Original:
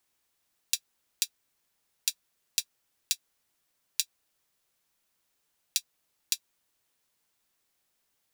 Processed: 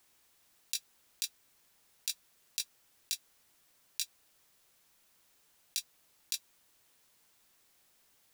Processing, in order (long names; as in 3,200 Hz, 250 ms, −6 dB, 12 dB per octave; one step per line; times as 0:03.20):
compressor whose output falls as the input rises −31 dBFS, ratio −0.5
level +1 dB